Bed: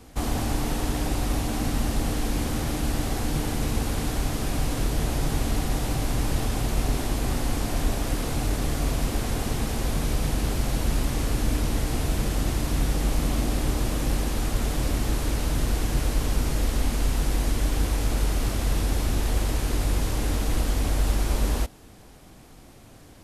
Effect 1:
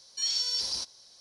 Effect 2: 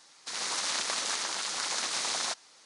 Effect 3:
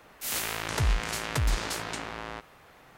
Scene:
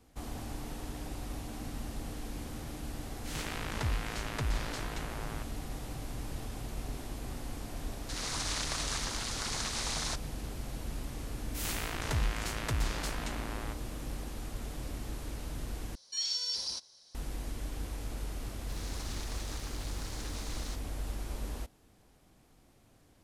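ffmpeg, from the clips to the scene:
-filter_complex "[3:a]asplit=2[s0][s1];[2:a]asplit=2[s2][s3];[0:a]volume=0.188[s4];[s0]adynamicsmooth=sensitivity=1.5:basefreq=7000[s5];[s1]equalizer=f=14000:t=o:w=0.77:g=-2.5[s6];[s3]acrusher=bits=7:mix=0:aa=0.000001[s7];[s4]asplit=2[s8][s9];[s8]atrim=end=15.954[s10];[1:a]atrim=end=1.2,asetpts=PTS-STARTPTS,volume=0.596[s11];[s9]atrim=start=17.146[s12];[s5]atrim=end=2.97,asetpts=PTS-STARTPTS,volume=0.473,afade=t=in:d=0.004:c=hsin,afade=t=out:st=2.966:d=0.004:c=hsin,adelay=3030[s13];[s2]atrim=end=2.65,asetpts=PTS-STARTPTS,volume=0.596,afade=t=in:d=0.004:c=hsin,afade=t=out:st=2.646:d=0.004:c=hsin,adelay=7820[s14];[s6]atrim=end=2.97,asetpts=PTS-STARTPTS,volume=0.531,afade=t=in:d=0.004:c=hsin,afade=t=out:st=2.966:d=0.004:c=hsin,adelay=11330[s15];[s7]atrim=end=2.65,asetpts=PTS-STARTPTS,volume=0.178,afade=t=in:d=0.004:c=hsin,afade=t=out:st=2.646:d=0.004:c=hsin,adelay=18420[s16];[s10][s11]acrossfade=d=0.004:c1=hsin:c2=hsin[s17];[s17][s12]acrossfade=d=0.004:c1=hsin:c2=hsin[s18];[s18][s13][s14][s15][s16]amix=inputs=5:normalize=0"

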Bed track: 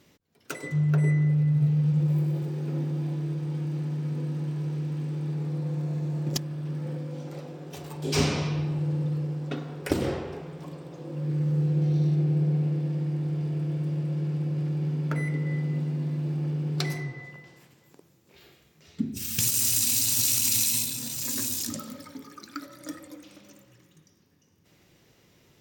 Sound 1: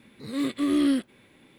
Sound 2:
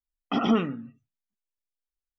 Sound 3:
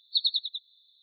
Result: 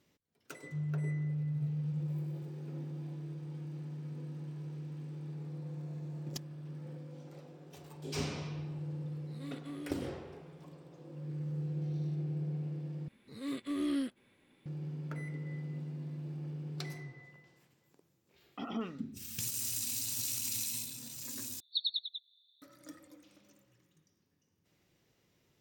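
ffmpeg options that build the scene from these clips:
-filter_complex "[1:a]asplit=2[s0][s1];[0:a]volume=0.237[s2];[s0]alimiter=limit=0.0891:level=0:latency=1:release=71[s3];[3:a]equalizer=f=3400:t=o:w=0.55:g=10[s4];[s2]asplit=3[s5][s6][s7];[s5]atrim=end=13.084[s8];[s1]atrim=end=1.58,asetpts=PTS-STARTPTS,volume=0.282[s9];[s6]atrim=start=14.656:end=21.604[s10];[s4]atrim=end=1.02,asetpts=PTS-STARTPTS,volume=0.188[s11];[s7]atrim=start=22.616[s12];[s3]atrim=end=1.58,asetpts=PTS-STARTPTS,volume=0.141,afade=t=in:d=0.004:c=hsin,afade=t=out:st=1.576:d=0.004:c=hsin,adelay=9070[s13];[2:a]atrim=end=2.18,asetpts=PTS-STARTPTS,volume=0.168,afade=t=in:d=0.004:c=hsin,afade=t=out:st=2.176:d=0.004:c=hsin,adelay=18260[s14];[s8][s9]acrossfade=d=0.004:c1=hsin:c2=hsin[s15];[s15][s10]acrossfade=d=0.004:c1=hsin:c2=hsin[s16];[s16][s11]acrossfade=d=0.004:c1=hsin:c2=hsin[s17];[s17][s12]acrossfade=d=0.004:c1=hsin:c2=hsin[s18];[s18][s13][s14]amix=inputs=3:normalize=0"

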